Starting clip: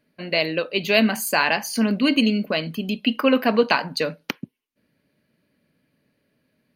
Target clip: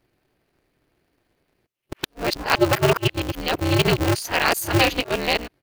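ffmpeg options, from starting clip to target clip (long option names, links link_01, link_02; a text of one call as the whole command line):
ffmpeg -i in.wav -af "areverse,atempo=1.2,aeval=exprs='val(0)*sgn(sin(2*PI*120*n/s))':channel_layout=same" out.wav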